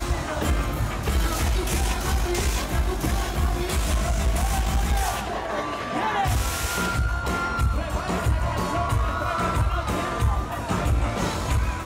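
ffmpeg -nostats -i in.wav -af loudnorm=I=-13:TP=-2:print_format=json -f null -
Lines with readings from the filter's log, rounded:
"input_i" : "-25.2",
"input_tp" : "-11.4",
"input_lra" : "0.6",
"input_thresh" : "-35.2",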